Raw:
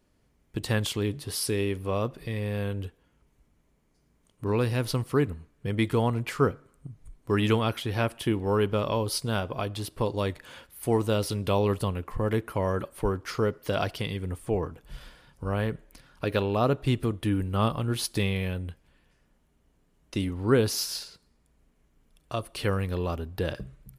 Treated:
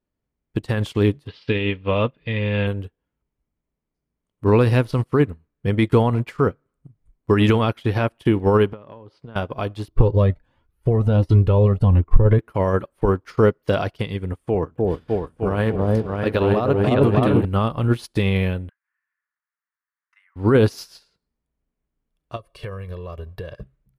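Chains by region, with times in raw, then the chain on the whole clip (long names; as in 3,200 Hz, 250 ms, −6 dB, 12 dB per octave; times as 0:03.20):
0:01.27–0:02.67: low-pass filter 3,800 Hz 24 dB per octave + parametric band 2,900 Hz +11.5 dB 1.4 octaves + notch comb filter 370 Hz
0:08.73–0:09.36: band-pass filter 100–2,500 Hz + downward compressor 8 to 1, threshold −32 dBFS
0:09.88–0:12.39: spectral tilt −3 dB per octave + flanger whose copies keep moving one way rising 1.4 Hz
0:14.33–0:17.45: high-pass filter 72 Hz 6 dB per octave + echo whose low-pass opens from repeat to repeat 303 ms, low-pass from 750 Hz, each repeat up 2 octaves, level 0 dB
0:18.69–0:20.36: Butterworth high-pass 1,100 Hz + high shelf with overshoot 2,600 Hz −12.5 dB, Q 3
0:22.36–0:23.63: comb filter 1.8 ms, depth 79% + downward compressor 12 to 1, threshold −30 dBFS
whole clip: high-shelf EQ 4,300 Hz −10.5 dB; boost into a limiter +19.5 dB; expander for the loud parts 2.5 to 1, over −25 dBFS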